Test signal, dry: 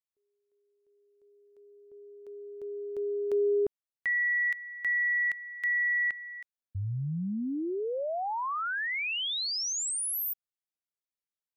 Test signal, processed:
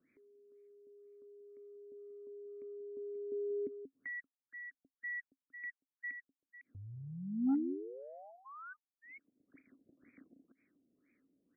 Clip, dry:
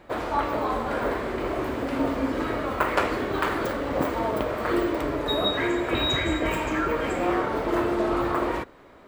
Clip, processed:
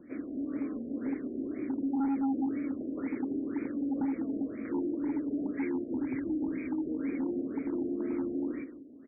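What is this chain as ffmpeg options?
ffmpeg -i in.wav -filter_complex "[0:a]acrossover=split=2700[link_01][link_02];[link_02]acompressor=threshold=-39dB:ratio=4:attack=1:release=60[link_03];[link_01][link_03]amix=inputs=2:normalize=0,acrossover=split=430|1500|3800[link_04][link_05][link_06][link_07];[link_07]acrusher=bits=7:mix=0:aa=0.000001[link_08];[link_04][link_05][link_06][link_08]amix=inputs=4:normalize=0,asplit=3[link_09][link_10][link_11];[link_09]bandpass=frequency=270:width_type=q:width=8,volume=0dB[link_12];[link_10]bandpass=frequency=2290:width_type=q:width=8,volume=-6dB[link_13];[link_11]bandpass=frequency=3010:width_type=q:width=8,volume=-9dB[link_14];[link_12][link_13][link_14]amix=inputs=3:normalize=0,equalizer=frequency=2800:width=1:gain=-8,aecho=1:1:184:0.266,volume=32dB,asoftclip=hard,volume=-32dB,acompressor=mode=upward:threshold=-48dB:ratio=2.5:attack=2.8:release=62:knee=2.83:detection=peak,afftfilt=real='re*lt(b*sr/1024,730*pow(2600/730,0.5+0.5*sin(2*PI*2*pts/sr)))':imag='im*lt(b*sr/1024,730*pow(2600/730,0.5+0.5*sin(2*PI*2*pts/sr)))':win_size=1024:overlap=0.75,volume=5dB" out.wav

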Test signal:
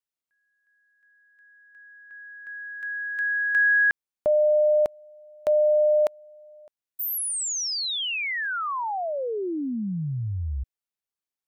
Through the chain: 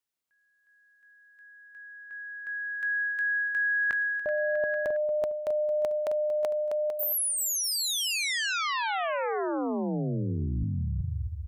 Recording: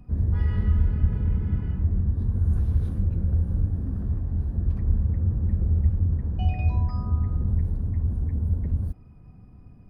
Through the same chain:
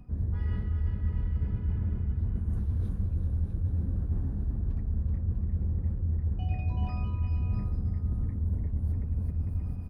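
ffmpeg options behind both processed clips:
ffmpeg -i in.wav -af "aecho=1:1:380|646|832.2|962.5|1054:0.631|0.398|0.251|0.158|0.1,areverse,acompressor=threshold=-29dB:ratio=6:attack=14:release=525:knee=1:detection=peak,areverse,volume=3dB" out.wav

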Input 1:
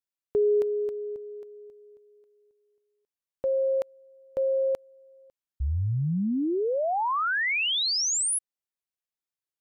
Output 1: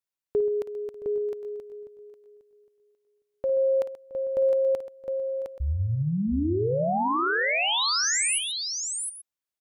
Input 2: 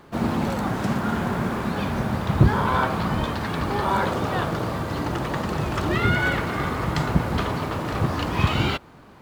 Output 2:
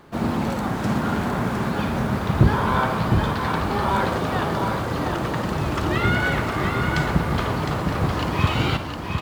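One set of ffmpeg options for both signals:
ffmpeg -i in.wav -af "aecho=1:1:54|131|669|710|829:0.237|0.188|0.119|0.531|0.15" out.wav

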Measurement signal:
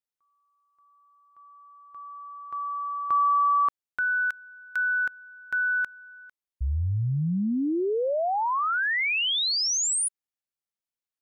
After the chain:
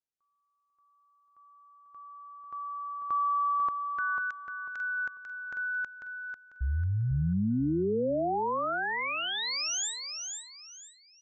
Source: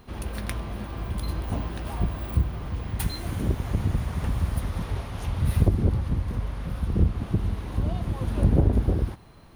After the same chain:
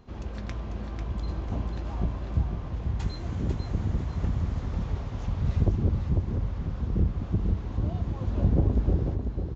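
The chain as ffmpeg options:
ffmpeg -i in.wav -af "equalizer=frequency=2900:width_type=o:width=3:gain=-6,acontrast=33,aecho=1:1:495|990|1485|1980:0.501|0.15|0.0451|0.0135,aresample=16000,aresample=44100,volume=-8dB" out.wav

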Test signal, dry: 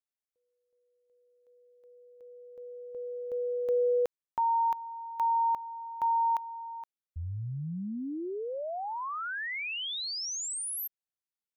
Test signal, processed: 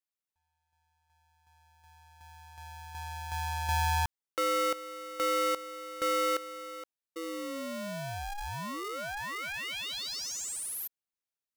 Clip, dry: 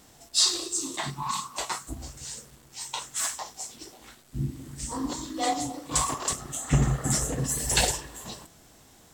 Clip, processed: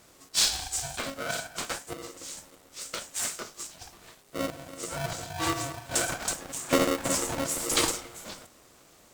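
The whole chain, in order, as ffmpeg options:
ffmpeg -i in.wav -af "aeval=exprs='val(0)*sgn(sin(2*PI*410*n/s))':channel_layout=same,volume=-2dB" out.wav

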